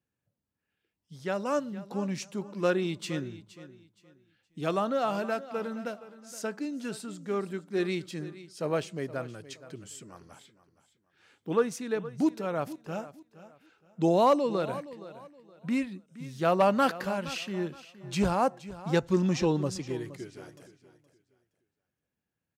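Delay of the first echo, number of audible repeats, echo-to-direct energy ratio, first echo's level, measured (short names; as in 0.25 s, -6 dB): 0.469 s, 2, -15.5 dB, -16.0 dB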